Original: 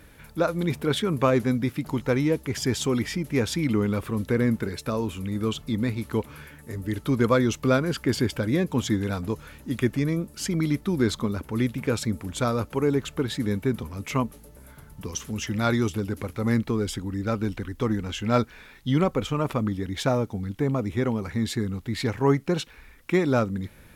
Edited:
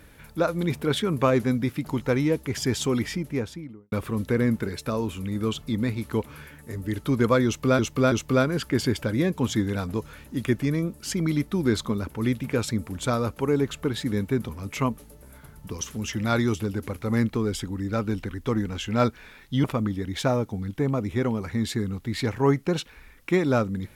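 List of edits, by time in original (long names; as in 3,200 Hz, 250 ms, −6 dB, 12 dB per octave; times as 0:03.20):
0:03.02–0:03.92: fade out and dull
0:07.46–0:07.79: repeat, 3 plays
0:18.98–0:19.45: remove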